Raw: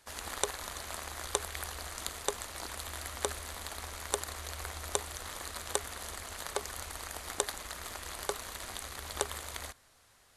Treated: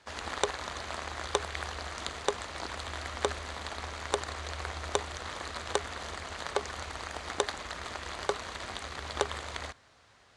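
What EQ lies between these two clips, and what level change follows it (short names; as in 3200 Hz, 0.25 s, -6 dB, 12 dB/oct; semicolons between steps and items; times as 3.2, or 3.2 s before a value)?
HPF 61 Hz; air absorption 94 m; bell 13000 Hz -15 dB 0.34 oct; +5.5 dB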